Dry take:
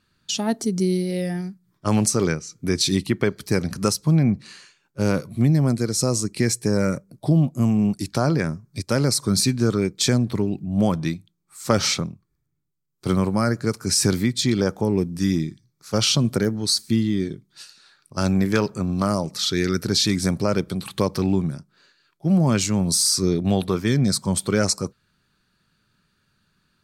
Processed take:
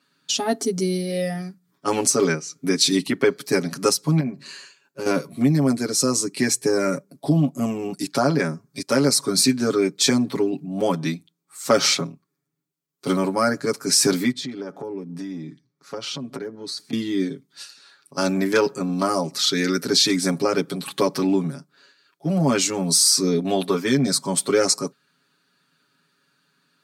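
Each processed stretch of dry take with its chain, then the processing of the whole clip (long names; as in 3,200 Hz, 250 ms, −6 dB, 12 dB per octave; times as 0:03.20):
0:04.20–0:05.06: EQ curve with evenly spaced ripples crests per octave 1.4, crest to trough 6 dB + downward compressor 2.5 to 1, threshold −26 dBFS
0:14.31–0:16.93: low-pass filter 1,900 Hz 6 dB per octave + downward compressor 5 to 1, threshold −29 dBFS
whole clip: high-pass filter 190 Hz 24 dB per octave; comb filter 7.2 ms, depth 98%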